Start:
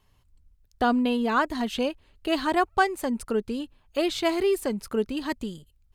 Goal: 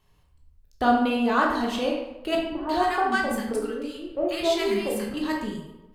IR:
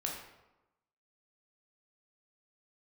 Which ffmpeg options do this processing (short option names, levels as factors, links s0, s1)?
-filter_complex "[0:a]asettb=1/sr,asplit=3[s0][s1][s2];[s0]atrim=end=2.354[s3];[s1]atrim=start=2.35:end=5.14,asetpts=PTS-STARTPTS,afade=t=in:d=0.004:c=qsin,afade=t=out:st=2.786:d=0.004:c=qsin,acrossover=split=260|1100[s4][s5][s6];[s5]adelay=200[s7];[s6]adelay=340[s8];[s4][s7][s8]amix=inputs=3:normalize=0,atrim=end_sample=123039[s9];[s2]atrim=start=5.136[s10];[s3][s9]acrossfade=d=0.004:c1=hsin:c2=qsin[s11];[s11][s10]acrossfade=d=0.004:c1=qsin:c2=hsin[s12];[1:a]atrim=start_sample=2205[s13];[s12][s13]afir=irnorm=-1:irlink=0"